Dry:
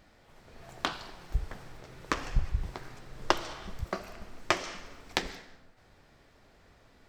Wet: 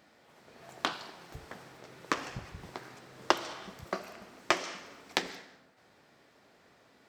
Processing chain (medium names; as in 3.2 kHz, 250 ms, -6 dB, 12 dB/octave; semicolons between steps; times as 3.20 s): high-pass 180 Hz 12 dB/octave